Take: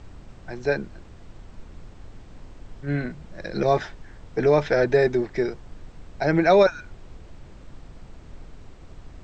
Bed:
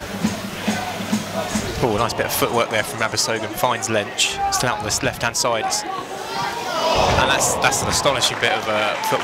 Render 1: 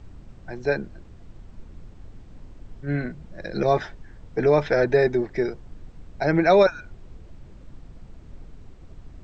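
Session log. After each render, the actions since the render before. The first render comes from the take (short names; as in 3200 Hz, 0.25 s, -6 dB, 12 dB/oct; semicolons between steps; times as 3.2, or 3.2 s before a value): denoiser 6 dB, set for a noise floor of -45 dBFS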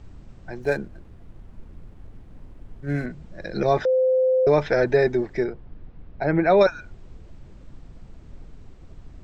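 0.6–3.06 median filter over 9 samples; 3.85–4.47 bleep 516 Hz -16 dBFS; 5.44–6.61 air absorption 280 m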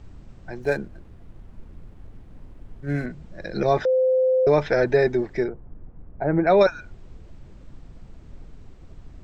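5.48–6.47 LPF 1300 Hz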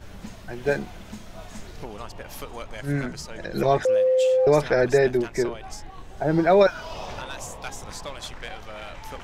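add bed -19 dB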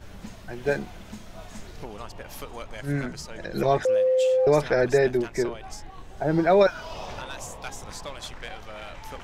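gain -1.5 dB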